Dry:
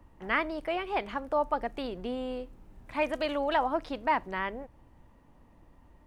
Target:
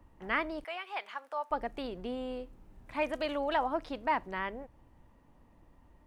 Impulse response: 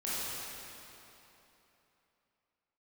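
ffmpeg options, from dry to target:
-filter_complex "[0:a]asettb=1/sr,asplit=3[link_01][link_02][link_03];[link_01]atrim=end=0.644[link_04];[link_02]atrim=start=0.64:end=1.51,asetpts=PTS-STARTPTS,afade=type=in:duration=0.004:curve=qsin,afade=type=out:start_time=0.866:duration=0.004:curve=qsin,highpass=930[link_05];[link_03]atrim=start=1.506[link_06];[link_04][link_05]acrossfade=duration=0.004:curve1=hsin:curve2=qsin[link_07];[link_07][link_06]acrossfade=duration=0.004:curve1=qsin:curve2=hsin,volume=-3dB"

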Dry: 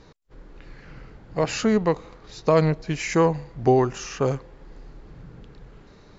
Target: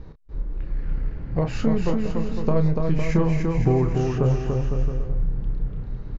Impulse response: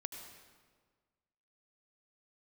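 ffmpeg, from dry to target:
-filter_complex "[0:a]asettb=1/sr,asplit=3[link_01][link_02][link_03];[link_01]atrim=end=1.514[link_04];[link_02]atrim=start=1.51:end=3.1,asetpts=PTS-STARTPTS,afade=type=in:duration=0.004:curve=qsin,afade=type=out:start_time=1.586:duration=0.004:curve=qsin,aeval=exprs='if(lt(val(0),0),0.708*val(0),val(0))':channel_layout=same[link_05];[link_03]atrim=start=3.096[link_06];[link_04][link_05]acrossfade=duration=0.004:curve1=hsin:curve2=qsin[link_07];[link_07][link_06]acrossfade=duration=0.004:curve1=qsin:curve2=hsin,aemphasis=mode=reproduction:type=riaa,acompressor=threshold=-17dB:ratio=6,asplit=2[link_08][link_09];[link_09]adelay=31,volume=-8.5dB[link_10];[link_08][link_10]amix=inputs=2:normalize=0,asplit=2[link_11][link_12];[link_12]aecho=0:1:290|507.5|670.6|793|884.7:0.631|0.398|0.251|0.158|0.1[link_13];[link_11][link_13]amix=inputs=2:normalize=0,volume=-1.5dB"

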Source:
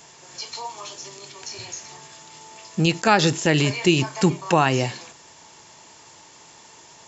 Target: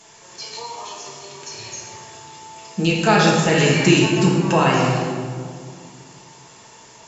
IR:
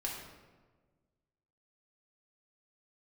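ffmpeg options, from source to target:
-filter_complex "[0:a]asettb=1/sr,asplit=3[link_01][link_02][link_03];[link_01]atrim=end=3.594[link_04];[link_02]atrim=start=3.59:end=4,asetpts=PTS-STARTPTS,afade=type=in:duration=0.004:curve=qsin,afade=type=out:start_time=0.406:duration=0.004:curve=qsin,equalizer=frequency=250:width_type=o:width=0.67:gain=6,equalizer=frequency=1600:width_type=o:width=0.67:gain=9,equalizer=frequency=6300:width_type=o:width=0.67:gain=6[link_05];[link_03]atrim=start=3.996[link_06];[link_04][link_05]acrossfade=duration=0.004:curve1=hsin:curve2=qsin[link_07];[link_07][link_06]acrossfade=duration=0.004:curve1=qsin:curve2=hsin[link_08];[1:a]atrim=start_sample=2205,asetrate=25578,aresample=44100[link_09];[link_08][link_09]afir=irnorm=-1:irlink=0,volume=-2.5dB"

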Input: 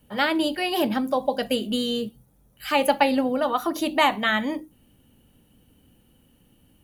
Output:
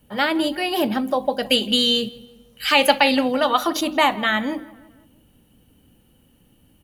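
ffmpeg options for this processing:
ffmpeg -i in.wav -filter_complex "[0:a]asettb=1/sr,asplit=3[link_01][link_02][link_03];[link_01]atrim=end=1.504[link_04];[link_02]atrim=start=1.5:end=3.81,asetpts=PTS-STARTPTS,afade=type=in:duration=0.004:curve=qsin,afade=type=out:start_time=2.306:duration=0.004:curve=qsin,equalizer=frequency=3700:width=0.44:gain=10.5[link_05];[link_03]atrim=start=3.806[link_06];[link_04][link_05]acrossfade=duration=0.004:curve1=hsin:curve2=qsin[link_07];[link_07][link_06]acrossfade=duration=0.004:curve1=qsin:curve2=hsin,asplit=2[link_08][link_09];[link_09]adelay=165,lowpass=frequency=2400:poles=1,volume=-19dB,asplit=2[link_10][link_11];[link_11]adelay=165,lowpass=frequency=2400:poles=1,volume=0.52,asplit=2[link_12][link_13];[link_13]adelay=165,lowpass=frequency=2400:poles=1,volume=0.52,asplit=2[link_14][link_15];[link_15]adelay=165,lowpass=frequency=2400:poles=1,volume=0.52[link_16];[link_08][link_10][link_12][link_14][link_16]amix=inputs=5:normalize=0,alimiter=level_in=4dB:limit=-1dB:release=50:level=0:latency=1,volume=-2dB" out.wav

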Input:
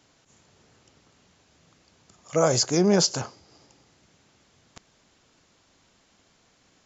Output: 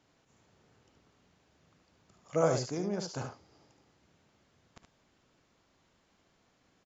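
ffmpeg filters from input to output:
ffmpeg -i in.wav -filter_complex "[0:a]asettb=1/sr,asplit=3[link_01][link_02][link_03];[link_01]atrim=end=2.574[link_04];[link_02]atrim=start=2.57:end=3.17,asetpts=PTS-STARTPTS,afade=type=in:duration=0.004:curve=qsin,afade=type=out:start_time=0.596:duration=0.004:curve=qsin,acompressor=threshold=-26dB:ratio=5[link_05];[link_03]atrim=start=3.166[link_06];[link_04][link_05]acrossfade=duration=0.004:curve1=hsin:curve2=qsin[link_07];[link_07][link_06]acrossfade=duration=0.004:curve1=qsin:curve2=hsin,highshelf=frequency=3800:gain=-9.5,aecho=1:1:57|73:0.178|0.447,volume=-6.5dB" out.wav

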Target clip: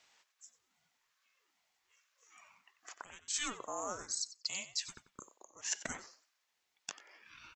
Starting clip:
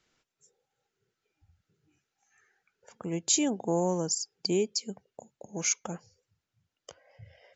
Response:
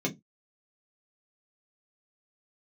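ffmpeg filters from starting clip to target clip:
-filter_complex "[0:a]highpass=frequency=920:width=0.5412,highpass=frequency=920:width=1.3066,areverse,acompressor=threshold=-42dB:ratio=10,areverse,asplit=2[link_01][link_02];[link_02]adelay=92,lowpass=frequency=5000:poles=1,volume=-12.5dB,asplit=2[link_03][link_04];[link_04]adelay=92,lowpass=frequency=5000:poles=1,volume=0.25,asplit=2[link_05][link_06];[link_06]adelay=92,lowpass=frequency=5000:poles=1,volume=0.25[link_07];[link_01][link_03][link_05][link_07]amix=inputs=4:normalize=0,aeval=exprs='val(0)*sin(2*PI*420*n/s+420*0.55/1.2*sin(2*PI*1.2*n/s))':channel_layout=same,volume=9.5dB"

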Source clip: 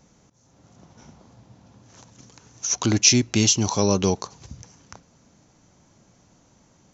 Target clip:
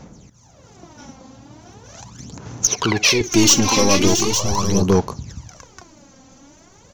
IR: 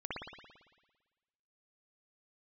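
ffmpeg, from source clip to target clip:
-filter_complex "[0:a]aeval=exprs='0.841*(cos(1*acos(clip(val(0)/0.841,-1,1)))-cos(1*PI/2))+0.211*(cos(5*acos(clip(val(0)/0.841,-1,1)))-cos(5*PI/2))+0.0596*(cos(8*acos(clip(val(0)/0.841,-1,1)))-cos(8*PI/2))':channel_layout=same,asettb=1/sr,asplit=3[link_01][link_02][link_03];[link_01]atrim=end=2.674[link_04];[link_02]atrim=start=2.67:end=3.21,asetpts=PTS-STARTPTS,afade=type=in:duration=0.004:curve=qsin,afade=type=out:start_time=0.536:duration=0.004:curve=qsin,highpass=190,equalizer=frequency=260:width_type=q:width=4:gain=-9,equalizer=frequency=440:width_type=q:width=4:gain=9,equalizer=frequency=970:width_type=q:width=4:gain=5,equalizer=frequency=2200:width_type=q:width=4:gain=3,lowpass=frequency=4700:width=0.5412,lowpass=frequency=4700:width=1.3066[link_05];[link_03]atrim=start=3.206[link_06];[link_04][link_05]acrossfade=duration=0.004:curve1=hsin:curve2=qsin[link_07];[link_07][link_06]acrossfade=duration=0.004:curve1=qsin:curve2=hsin,asoftclip=type=tanh:threshold=-9dB,aecho=1:1:58|592|610|677|860:0.126|0.106|0.141|0.376|0.447,aphaser=in_gain=1:out_gain=1:delay=3.8:decay=0.67:speed=0.4:type=sinusoidal"

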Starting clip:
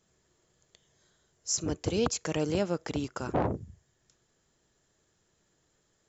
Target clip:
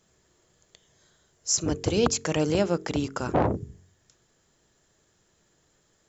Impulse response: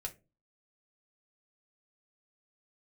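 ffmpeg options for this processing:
-af "bandreject=frequency=45.38:width_type=h:width=4,bandreject=frequency=90.76:width_type=h:width=4,bandreject=frequency=136.14:width_type=h:width=4,bandreject=frequency=181.52:width_type=h:width=4,bandreject=frequency=226.9:width_type=h:width=4,bandreject=frequency=272.28:width_type=h:width=4,bandreject=frequency=317.66:width_type=h:width=4,bandreject=frequency=363.04:width_type=h:width=4,bandreject=frequency=408.42:width_type=h:width=4,bandreject=frequency=453.8:width_type=h:width=4,volume=5.5dB"

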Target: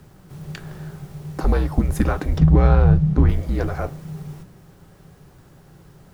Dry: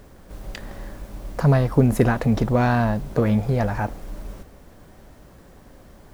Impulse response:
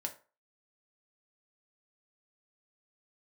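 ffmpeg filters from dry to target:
-filter_complex "[0:a]asettb=1/sr,asplit=3[link_01][link_02][link_03];[link_01]atrim=end=2.384[link_04];[link_02]atrim=start=2.38:end=3.29,asetpts=PTS-STARTPTS,afade=type=in:duration=0.004:curve=qsin,afade=type=out:start_time=0.906:duration=0.004:curve=qsin,aemphasis=mode=reproduction:type=bsi[link_05];[link_03]atrim=start=3.286[link_06];[link_04][link_05]acrossfade=duration=0.004:curve1=hsin:curve2=qsin[link_07];[link_07][link_06]acrossfade=duration=0.004:curve1=qsin:curve2=hsin,afreqshift=-190,asplit=2[link_08][link_09];[1:a]atrim=start_sample=2205,asetrate=57330,aresample=44100[link_10];[link_09][link_10]afir=irnorm=-1:irlink=0,volume=-2.5dB[link_11];[link_08][link_11]amix=inputs=2:normalize=0,volume=-4dB"

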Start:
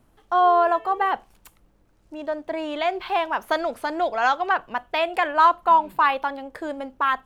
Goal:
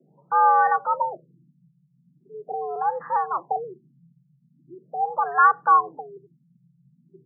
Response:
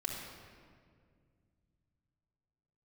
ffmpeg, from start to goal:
-af "afreqshift=130,afftfilt=real='re*lt(b*sr/1024,200*pow(2000/200,0.5+0.5*sin(2*PI*0.41*pts/sr)))':imag='im*lt(b*sr/1024,200*pow(2000/200,0.5+0.5*sin(2*PI*0.41*pts/sr)))':win_size=1024:overlap=0.75"

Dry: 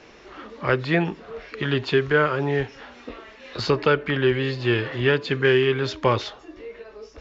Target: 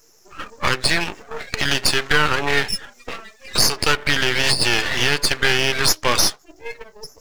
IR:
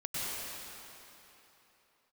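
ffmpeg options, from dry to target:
-af "agate=range=-6dB:threshold=-38dB:ratio=16:detection=peak,afftdn=noise_reduction=31:noise_floor=-43,aderivative,aexciter=amount=13.5:drive=7:freq=5500,acompressor=threshold=-45dB:ratio=2.5,aeval=exprs='max(val(0),0)':channel_layout=same,alimiter=level_in=33.5dB:limit=-1dB:release=50:level=0:latency=1,volume=-1dB"

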